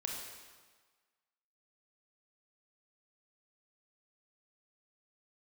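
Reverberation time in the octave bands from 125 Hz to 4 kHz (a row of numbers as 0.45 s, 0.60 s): 1.3 s, 1.4 s, 1.4 s, 1.5 s, 1.4 s, 1.3 s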